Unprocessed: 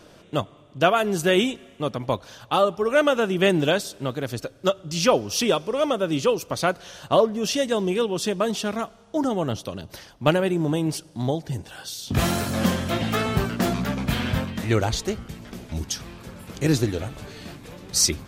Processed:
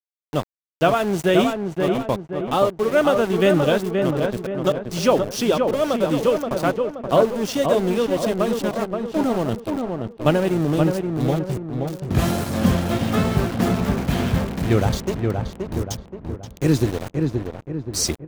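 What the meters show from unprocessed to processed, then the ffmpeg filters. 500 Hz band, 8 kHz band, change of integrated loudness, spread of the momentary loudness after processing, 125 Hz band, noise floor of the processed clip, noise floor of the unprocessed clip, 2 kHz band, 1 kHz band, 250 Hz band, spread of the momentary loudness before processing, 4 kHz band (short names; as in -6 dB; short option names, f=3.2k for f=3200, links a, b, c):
+3.5 dB, -3.0 dB, +2.5 dB, 9 LU, +4.5 dB, -46 dBFS, -51 dBFS, -0.5 dB, +1.5 dB, +4.0 dB, 14 LU, -2.5 dB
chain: -filter_complex "[0:a]aeval=exprs='val(0)*gte(abs(val(0)),0.0447)':c=same,tiltshelf=f=970:g=3.5,asplit=2[a][b];[b]adelay=526,lowpass=f=1.7k:p=1,volume=-4dB,asplit=2[c][d];[d]adelay=526,lowpass=f=1.7k:p=1,volume=0.48,asplit=2[e][f];[f]adelay=526,lowpass=f=1.7k:p=1,volume=0.48,asplit=2[g][h];[h]adelay=526,lowpass=f=1.7k:p=1,volume=0.48,asplit=2[i][j];[j]adelay=526,lowpass=f=1.7k:p=1,volume=0.48,asplit=2[k][l];[l]adelay=526,lowpass=f=1.7k:p=1,volume=0.48[m];[a][c][e][g][i][k][m]amix=inputs=7:normalize=0"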